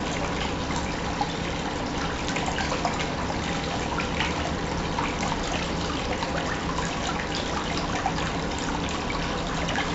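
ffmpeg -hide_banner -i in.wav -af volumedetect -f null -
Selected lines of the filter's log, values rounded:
mean_volume: -27.6 dB
max_volume: -11.0 dB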